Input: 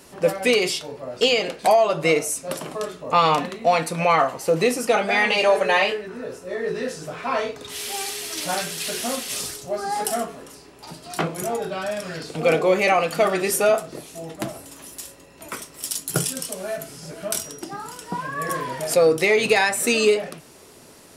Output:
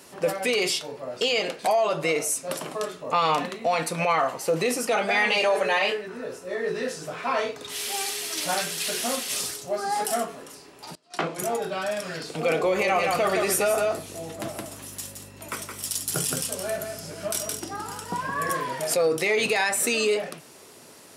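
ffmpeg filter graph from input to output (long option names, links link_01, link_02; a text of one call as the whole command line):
ffmpeg -i in.wav -filter_complex "[0:a]asettb=1/sr,asplit=3[link_01][link_02][link_03];[link_01]atrim=end=10.954[link_04];[link_02]atrim=start=10.95:end=11.39,asetpts=PTS-STARTPTS,afade=type=in:duration=0.004:curve=qsin,afade=type=out:start_time=0.436:duration=0.004:curve=qsin,agate=range=-21dB:threshold=-35dB:ratio=16:release=100:detection=peak,highpass=180,lowpass=7000[link_05];[link_03]atrim=start=11.386[link_06];[link_04][link_05]acrossfade=duration=0.004:curve1=hsin:curve2=qsin[link_07];[link_07][link_06]acrossfade=duration=0.004:curve1=qsin:curve2=hsin,asettb=1/sr,asplit=3[link_08][link_09][link_10];[link_08]atrim=end=12.624[link_11];[link_09]atrim=start=12.62:end=18.51,asetpts=PTS-STARTPTS,afade=type=in:duration=0.004:curve=qsin,afade=type=out:start_time=5.886:duration=0.004:curve=qsin,aeval=exprs='val(0)+0.0112*(sin(2*PI*50*n/s)+sin(2*PI*2*50*n/s)/2+sin(2*PI*3*50*n/s)/3+sin(2*PI*4*50*n/s)/4+sin(2*PI*5*50*n/s)/5)':channel_layout=same,aecho=1:1:169:0.473,atrim=end_sample=259749[link_12];[link_10]atrim=start=18.506[link_13];[link_11][link_12]acrossfade=duration=0.004:curve1=hsin:curve2=qsin[link_14];[link_14][link_13]acrossfade=duration=0.004:curve1=qsin:curve2=hsin,alimiter=limit=-13.5dB:level=0:latency=1:release=37,highpass=82,lowshelf=frequency=370:gain=-4.5" out.wav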